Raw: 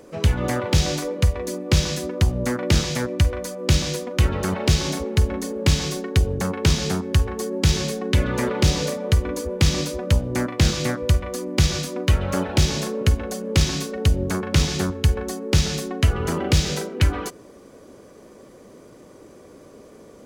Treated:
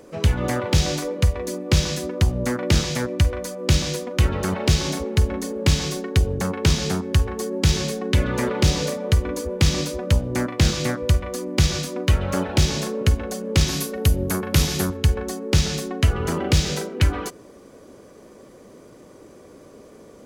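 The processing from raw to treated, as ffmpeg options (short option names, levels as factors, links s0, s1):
-filter_complex "[0:a]asettb=1/sr,asplit=3[s0][s1][s2];[s0]atrim=end=13.684[s3];[s1]atrim=start=13.68:end=14.97,asetpts=PTS-STARTPTS,afade=t=in:d=0.004:c=qsin,afade=t=out:st=1.286:d=0.004:c=qsin,equalizer=f=12000:t=o:w=0.49:g=15[s4];[s2]atrim=start=14.966[s5];[s3][s4]acrossfade=d=0.004:c1=hsin:c2=qsin[s6];[s6][s5]acrossfade=d=0.004:c1=qsin:c2=hsin"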